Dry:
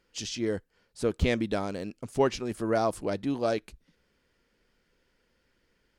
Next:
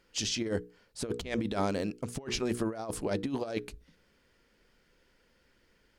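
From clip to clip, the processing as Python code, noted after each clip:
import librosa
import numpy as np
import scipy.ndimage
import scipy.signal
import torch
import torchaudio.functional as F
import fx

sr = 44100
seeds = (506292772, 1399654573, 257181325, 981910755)

y = fx.hum_notches(x, sr, base_hz=60, count=8)
y = fx.over_compress(y, sr, threshold_db=-31.0, ratio=-0.5)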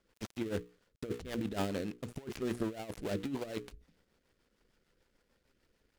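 y = fx.dead_time(x, sr, dead_ms=0.22)
y = fx.rotary(y, sr, hz=6.7)
y = y * 10.0 ** (-2.5 / 20.0)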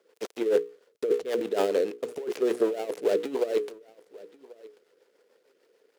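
y = fx.highpass_res(x, sr, hz=440.0, q=4.9)
y = y + 10.0 ** (-22.0 / 20.0) * np.pad(y, (int(1088 * sr / 1000.0), 0))[:len(y)]
y = y * 10.0 ** (5.0 / 20.0)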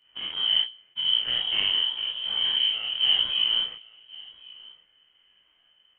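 y = fx.spec_dilate(x, sr, span_ms=120)
y = fx.freq_invert(y, sr, carrier_hz=3500)
y = fx.detune_double(y, sr, cents=32)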